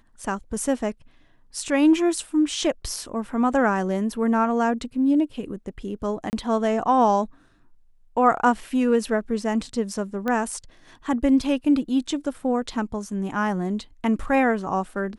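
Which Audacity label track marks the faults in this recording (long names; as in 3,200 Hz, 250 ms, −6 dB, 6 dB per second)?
6.300000	6.330000	drop-out 29 ms
10.280000	10.280000	click −14 dBFS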